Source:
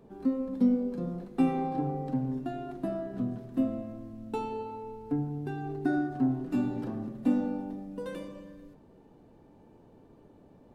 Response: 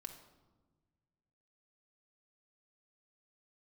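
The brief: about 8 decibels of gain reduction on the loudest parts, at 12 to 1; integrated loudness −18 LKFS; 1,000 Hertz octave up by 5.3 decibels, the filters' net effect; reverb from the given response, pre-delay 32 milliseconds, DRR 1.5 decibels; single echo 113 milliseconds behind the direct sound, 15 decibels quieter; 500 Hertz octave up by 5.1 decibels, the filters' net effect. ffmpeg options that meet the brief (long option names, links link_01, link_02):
-filter_complex "[0:a]equalizer=frequency=500:width_type=o:gain=5,equalizer=frequency=1000:width_type=o:gain=5,acompressor=threshold=-27dB:ratio=12,aecho=1:1:113:0.178,asplit=2[link_01][link_02];[1:a]atrim=start_sample=2205,adelay=32[link_03];[link_02][link_03]afir=irnorm=-1:irlink=0,volume=3dB[link_04];[link_01][link_04]amix=inputs=2:normalize=0,volume=13.5dB"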